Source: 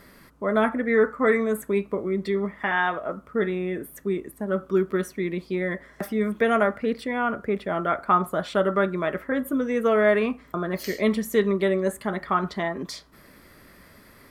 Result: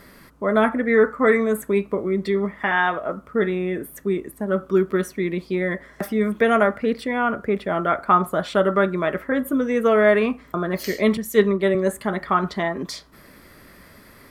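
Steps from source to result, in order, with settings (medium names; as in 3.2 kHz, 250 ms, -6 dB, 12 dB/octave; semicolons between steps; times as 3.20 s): 11.17–11.75 s: three bands expanded up and down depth 100%; trim +3.5 dB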